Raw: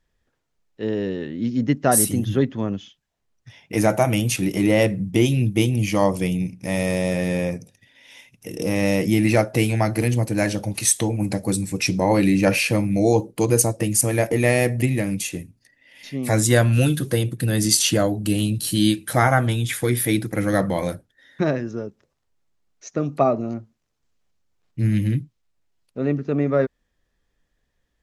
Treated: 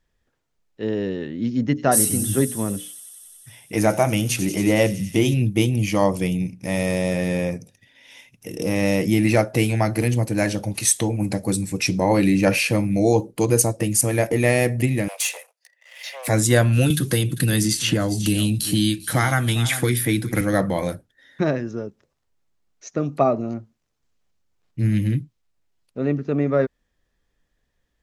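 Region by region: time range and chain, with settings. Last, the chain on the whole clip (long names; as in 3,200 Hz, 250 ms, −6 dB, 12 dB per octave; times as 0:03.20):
0:01.63–0:05.34: mains-hum notches 60/120/180/240/300/360/420/480/540 Hz + delay with a high-pass on its return 92 ms, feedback 83%, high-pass 5,000 Hz, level −8 dB
0:15.08–0:16.28: leveller curve on the samples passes 2 + Chebyshev high-pass filter 500 Hz, order 6
0:16.90–0:20.41: parametric band 600 Hz −6.5 dB 1.1 octaves + single-tap delay 395 ms −19 dB + multiband upward and downward compressor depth 100%
whole clip: no processing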